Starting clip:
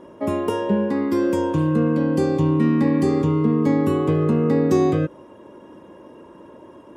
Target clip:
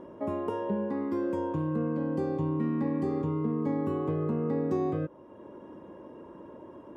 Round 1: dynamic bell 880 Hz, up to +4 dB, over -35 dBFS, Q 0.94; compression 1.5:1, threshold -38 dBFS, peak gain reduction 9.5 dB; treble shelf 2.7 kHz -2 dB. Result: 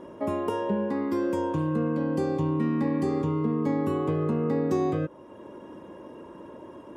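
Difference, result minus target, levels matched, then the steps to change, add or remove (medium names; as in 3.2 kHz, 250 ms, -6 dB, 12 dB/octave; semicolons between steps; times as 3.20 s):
4 kHz band +6.5 dB; compression: peak gain reduction -3 dB
change: compression 1.5:1, threshold -47.5 dBFS, peak gain reduction 12.5 dB; change: treble shelf 2.7 kHz -13.5 dB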